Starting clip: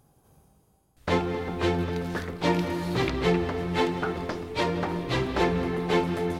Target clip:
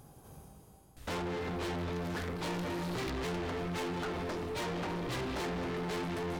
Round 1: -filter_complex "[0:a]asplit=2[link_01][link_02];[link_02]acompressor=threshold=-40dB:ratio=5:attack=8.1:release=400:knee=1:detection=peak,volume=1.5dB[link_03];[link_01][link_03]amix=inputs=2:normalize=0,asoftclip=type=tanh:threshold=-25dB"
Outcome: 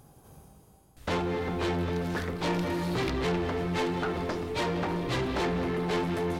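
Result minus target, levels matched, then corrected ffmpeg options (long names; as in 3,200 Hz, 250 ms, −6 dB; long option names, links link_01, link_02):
soft clipping: distortion −5 dB
-filter_complex "[0:a]asplit=2[link_01][link_02];[link_02]acompressor=threshold=-40dB:ratio=5:attack=8.1:release=400:knee=1:detection=peak,volume=1.5dB[link_03];[link_01][link_03]amix=inputs=2:normalize=0,asoftclip=type=tanh:threshold=-34.5dB"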